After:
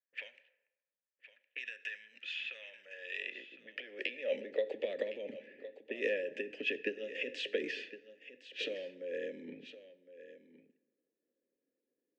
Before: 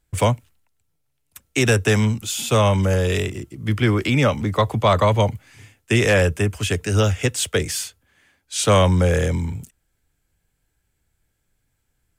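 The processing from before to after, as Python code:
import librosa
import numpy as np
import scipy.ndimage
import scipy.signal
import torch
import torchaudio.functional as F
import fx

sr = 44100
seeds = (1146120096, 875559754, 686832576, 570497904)

p1 = fx.env_lowpass(x, sr, base_hz=700.0, full_db=-14.5)
p2 = fx.band_shelf(p1, sr, hz=780.0, db=-13.5, octaves=2.5)
p3 = fx.over_compress(p2, sr, threshold_db=-28.0, ratio=-1.0)
p4 = fx.vowel_filter(p3, sr, vowel='e')
p5 = fx.filter_sweep_highpass(p4, sr, from_hz=1300.0, to_hz=330.0, start_s=2.63, end_s=5.06, q=1.9)
p6 = fx.bandpass_edges(p5, sr, low_hz=180.0, high_hz=4800.0)
p7 = fx.small_body(p6, sr, hz=(240.0, 400.0, 1700.0), ring_ms=25, db=7)
p8 = p7 + fx.echo_single(p7, sr, ms=1062, db=-14.5, dry=0)
p9 = fx.rev_plate(p8, sr, seeds[0], rt60_s=1.1, hf_ratio=0.65, predelay_ms=0, drr_db=15.0)
y = p9 * librosa.db_to_amplitude(3.0)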